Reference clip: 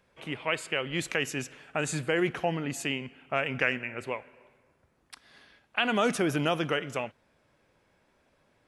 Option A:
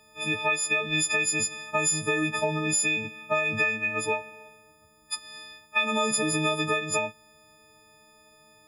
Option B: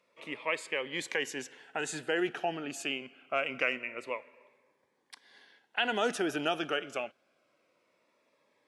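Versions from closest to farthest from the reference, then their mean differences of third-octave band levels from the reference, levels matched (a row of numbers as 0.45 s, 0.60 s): B, A; 3.0 dB, 9.5 dB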